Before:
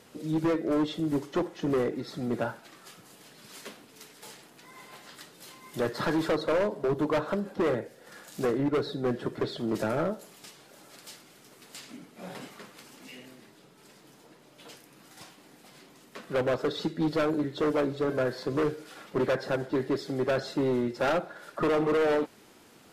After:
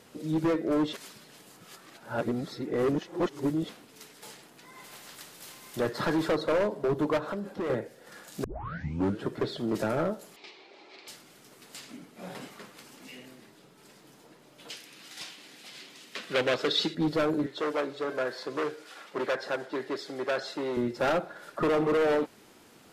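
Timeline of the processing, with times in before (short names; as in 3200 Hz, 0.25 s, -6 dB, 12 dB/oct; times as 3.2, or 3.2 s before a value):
0.93–3.69 reverse
4.84–5.77 spectral compressor 2:1
7.17–7.7 compressor, threshold -30 dBFS
8.44 tape start 0.81 s
10.36–11.08 speaker cabinet 360–4700 Hz, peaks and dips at 370 Hz +10 dB, 550 Hz -3 dB, 820 Hz +4 dB, 1500 Hz -7 dB, 2300 Hz +9 dB, 4100 Hz +4 dB
14.7–16.95 weighting filter D
17.46–20.77 weighting filter A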